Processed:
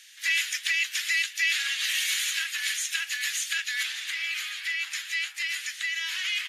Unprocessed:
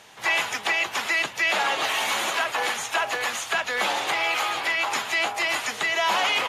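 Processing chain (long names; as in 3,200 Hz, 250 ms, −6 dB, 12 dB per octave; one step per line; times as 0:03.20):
high-shelf EQ 2,600 Hz +10 dB, from 0:03.83 +3 dB
Chebyshev high-pass filter 1,700 Hz, order 4
level −5.5 dB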